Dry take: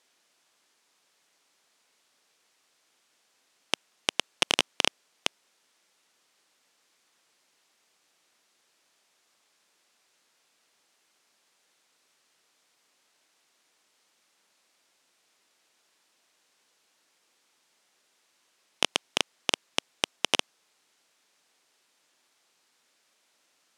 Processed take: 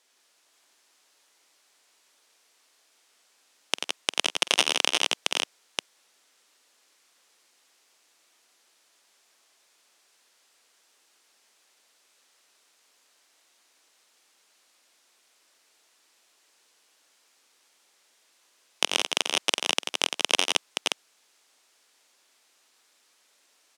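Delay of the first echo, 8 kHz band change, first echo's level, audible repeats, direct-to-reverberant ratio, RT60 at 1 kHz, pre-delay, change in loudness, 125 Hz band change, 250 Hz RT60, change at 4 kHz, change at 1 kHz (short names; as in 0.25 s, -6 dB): 48 ms, +5.5 dB, -19.5 dB, 4, none, none, none, +3.5 dB, n/a, none, +4.5 dB, +3.5 dB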